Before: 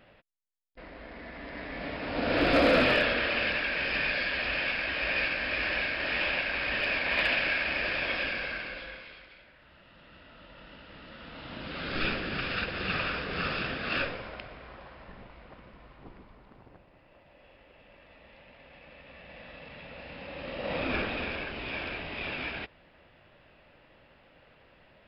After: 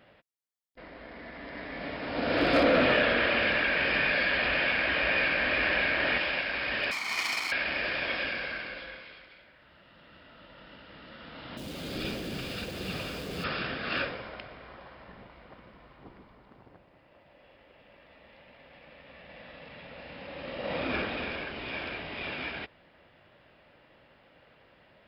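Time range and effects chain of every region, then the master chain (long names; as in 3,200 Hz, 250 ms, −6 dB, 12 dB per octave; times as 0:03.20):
0:02.63–0:06.18: high-frequency loss of the air 150 metres + single-tap delay 164 ms −16 dB + envelope flattener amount 50%
0:06.91–0:07.52: lower of the sound and its delayed copy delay 0.9 ms + high-pass filter 770 Hz 6 dB per octave + notch filter 3,400 Hz, Q 8.9
0:11.57–0:13.44: converter with a step at zero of −39.5 dBFS + parametric band 1,500 Hz −13 dB 1.6 octaves
whole clip: high-pass filter 83 Hz 6 dB per octave; notch filter 2,600 Hz, Q 19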